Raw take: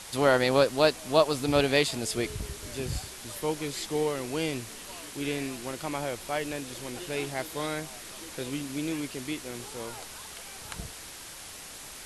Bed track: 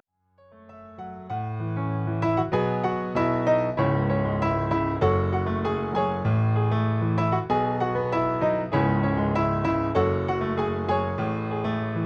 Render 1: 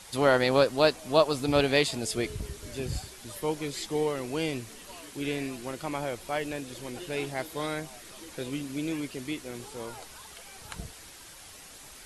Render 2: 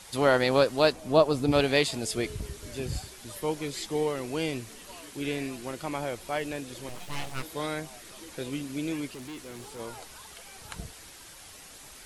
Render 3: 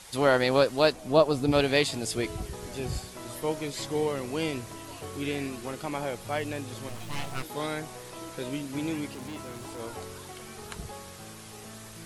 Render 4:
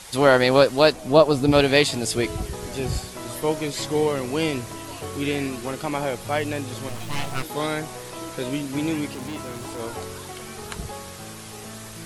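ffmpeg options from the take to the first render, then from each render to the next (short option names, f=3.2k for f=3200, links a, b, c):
-af "afftdn=nr=6:nf=-44"
-filter_complex "[0:a]asettb=1/sr,asplit=3[a][b][c];[a]atrim=end=0.924[d];[b]atrim=start=0.92:end=1.52,asetpts=PTS-STARTPTS,afade=t=in:d=0.004:c=qsin,afade=t=out:st=0.596:d=0.004:c=qsin,tiltshelf=f=870:g=4.5[e];[c]atrim=start=1.516[f];[d][e]acrossfade=d=0.004:c1=hsin:c2=qsin[g];[g][f]acrossfade=d=0.004:c1=qsin:c2=hsin,asettb=1/sr,asplit=3[h][i][j];[h]atrim=end=6.894[k];[i]atrim=start=6.89:end=7.43,asetpts=PTS-STARTPTS,afade=t=in:d=0.004:c=qsin,afade=t=out:st=0.536:d=0.004:c=qsin,aeval=exprs='abs(val(0))':c=same[l];[j]atrim=start=7.426[m];[k][l]acrossfade=d=0.004:c1=hsin:c2=qsin[n];[n][m]acrossfade=d=0.004:c1=qsin:c2=hsin,asettb=1/sr,asplit=3[o][p][q];[o]atrim=end=9.144[r];[p]atrim=start=9.14:end=9.79,asetpts=PTS-STARTPTS,afade=t=in:d=0.004:c=qsin,afade=t=out:st=0.646:d=0.004:c=qsin,asoftclip=type=hard:threshold=-38dB[s];[q]atrim=start=9.786[t];[r][s]acrossfade=d=0.004:c1=hsin:c2=qsin[u];[u][t]acrossfade=d=0.004:c1=qsin:c2=hsin"
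-filter_complex "[1:a]volume=-20dB[a];[0:a][a]amix=inputs=2:normalize=0"
-af "volume=6.5dB,alimiter=limit=-3dB:level=0:latency=1"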